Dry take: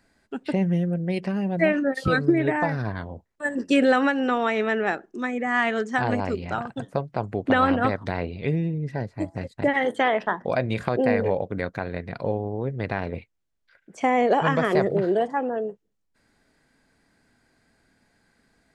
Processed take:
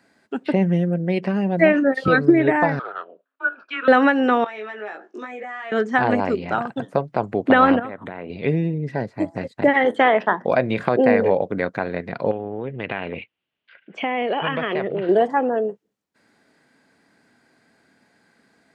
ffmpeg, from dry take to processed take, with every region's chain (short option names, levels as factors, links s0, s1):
-filter_complex "[0:a]asettb=1/sr,asplit=3[s0][s1][s2];[s0]atrim=end=2.794[s3];[s1]atrim=start=2.79:end=3.88,asetpts=PTS-STARTPTS,afade=t=in:d=0.004:c=qsin,afade=t=out:st=1.086:d=0.004:c=qsin,afreqshift=-270,highpass=f=500:w=0.5412,highpass=f=500:w=1.3066,equalizer=f=790:t=q:w=4:g=-8,equalizer=f=1300:t=q:w=4:g=5,equalizer=f=2100:t=q:w=4:g=-9,lowpass=f=3000:w=0.5412,lowpass=f=3000:w=1.3066[s4];[s2]atrim=start=3.876[s5];[s3][s4]acrossfade=d=0.004:c1=hsin:c2=qsin[s6];[s6][s5]acrossfade=d=0.004:c1=qsin:c2=hsin,asettb=1/sr,asplit=3[s7][s8][s9];[s7]atrim=end=4.444[s10];[s8]atrim=start=4.44:end=5.72,asetpts=PTS-STARTPTS,afade=t=in:d=0.004:c=qsin,afade=t=out:st=1.276:d=0.004:c=qsin,highpass=430,lowpass=6200,acompressor=threshold=0.0158:ratio=10:attack=3.2:release=140:knee=1:detection=peak,asplit=2[s11][s12];[s12]adelay=19,volume=0.708[s13];[s11][s13]amix=inputs=2:normalize=0,atrim=end_sample=56448[s14];[s9]atrim=start=5.716[s15];[s10][s14]acrossfade=d=0.004:c1=hsin:c2=qsin[s16];[s16][s15]acrossfade=d=0.004:c1=qsin:c2=hsin,asettb=1/sr,asplit=3[s17][s18][s19];[s17]atrim=end=7.794[s20];[s18]atrim=start=7.79:end=8.3,asetpts=PTS-STARTPTS,afade=t=in:d=0.004:c=qsin,afade=t=out:st=0.506:d=0.004:c=qsin,equalizer=f=72:w=2.4:g=-8,acompressor=threshold=0.0224:ratio=5:attack=3.2:release=140:knee=1:detection=peak,asuperstop=centerf=5100:order=4:qfactor=1.2[s21];[s19]atrim=start=8.296[s22];[s20][s21]acrossfade=d=0.004:c1=hsin:c2=qsin[s23];[s23][s22]acrossfade=d=0.004:c1=qsin:c2=hsin,asettb=1/sr,asplit=3[s24][s25][s26];[s24]atrim=end=12.314[s27];[s25]atrim=start=12.31:end=15.09,asetpts=PTS-STARTPTS,afade=t=in:d=0.004:c=qsin,afade=t=out:st=2.776:d=0.004:c=qsin,acompressor=threshold=0.0316:ratio=2.5:attack=3.2:release=140:knee=1:detection=peak,lowpass=f=2900:t=q:w=4.9[s28];[s26]atrim=start=15.086[s29];[s27][s28]acrossfade=d=0.004:c1=hsin:c2=qsin[s30];[s30][s29]acrossfade=d=0.004:c1=qsin:c2=hsin,highpass=170,acrossover=split=4100[s31][s32];[s32]acompressor=threshold=0.00126:ratio=4:attack=1:release=60[s33];[s31][s33]amix=inputs=2:normalize=0,highshelf=f=5500:g=-6,volume=2"